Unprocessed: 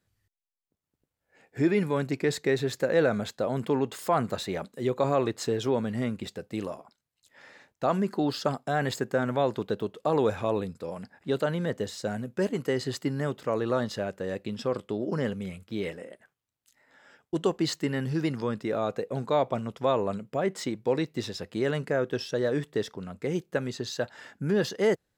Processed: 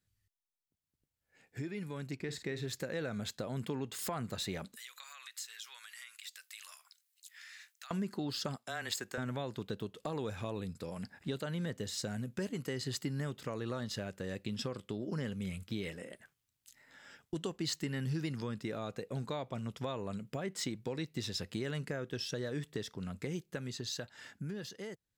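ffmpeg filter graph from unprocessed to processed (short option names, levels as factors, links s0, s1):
-filter_complex "[0:a]asettb=1/sr,asplit=3[s0][s1][s2];[s0]atrim=end=2.154[s3];[s1]atrim=start=2.15:end=2.66,asetpts=PTS-STARTPTS,afade=t=in:d=0.004:c=qsin,afade=t=out:st=0.506:d=0.004:c=qsin,highshelf=f=6200:g=-8.5,asplit=2[s4][s5];[s5]adelay=49,volume=0.251[s6];[s4][s6]amix=inputs=2:normalize=0,atrim=end_sample=22491[s7];[s2]atrim=start=2.656[s8];[s3][s7]acrossfade=d=0.004:c1=hsin:c2=qsin[s9];[s9][s8]acrossfade=d=0.004:c1=qsin:c2=hsin,asettb=1/sr,asplit=3[s10][s11][s12];[s10]atrim=end=4.764[s13];[s11]atrim=start=4.76:end=7.91,asetpts=PTS-STARTPTS,afade=t=in:d=0.004:c=qsin,afade=t=out:st=3.146:d=0.004:c=qsin,highpass=f=1400:w=0.5412,highpass=f=1400:w=1.3066,acompressor=threshold=0.00316:ratio=5:attack=3.2:release=140:knee=1:detection=peak,highshelf=f=8200:g=9.5[s14];[s12]atrim=start=7.906[s15];[s13][s14]acrossfade=d=0.004:c1=hsin:c2=qsin[s16];[s16][s15]acrossfade=d=0.004:c1=qsin:c2=hsin,asettb=1/sr,asplit=3[s17][s18][s19];[s17]atrim=end=8.564[s20];[s18]atrim=start=8.56:end=9.18,asetpts=PTS-STARTPTS,afade=t=in:d=0.004:c=qsin,afade=t=out:st=0.616:d=0.004:c=qsin,highpass=f=960:p=1,afreqshift=-17[s21];[s19]atrim=start=9.176[s22];[s20][s21]acrossfade=d=0.004:c1=hsin:c2=qsin[s23];[s23][s22]acrossfade=d=0.004:c1=qsin:c2=hsin,acompressor=threshold=0.0126:ratio=2.5,equalizer=f=630:w=0.41:g=-10.5,dynaudnorm=f=580:g=7:m=2.82,volume=0.708"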